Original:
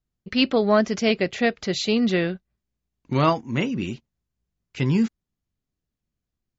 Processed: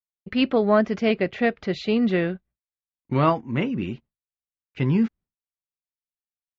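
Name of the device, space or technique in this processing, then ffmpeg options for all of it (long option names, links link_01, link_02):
hearing-loss simulation: -af "lowpass=2500,agate=range=-33dB:threshold=-44dB:ratio=3:detection=peak"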